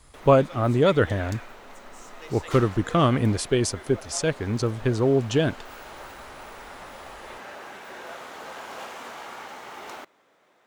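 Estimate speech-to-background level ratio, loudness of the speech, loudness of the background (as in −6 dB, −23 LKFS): 17.5 dB, −23.5 LKFS, −41.0 LKFS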